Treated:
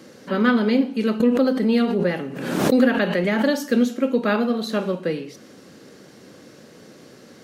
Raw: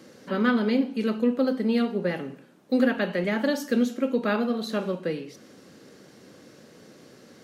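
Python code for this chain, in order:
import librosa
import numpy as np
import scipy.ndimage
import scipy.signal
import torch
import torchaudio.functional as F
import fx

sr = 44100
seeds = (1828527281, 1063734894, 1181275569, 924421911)

y = fx.pre_swell(x, sr, db_per_s=45.0, at=(1.2, 3.59))
y = y * 10.0 ** (4.5 / 20.0)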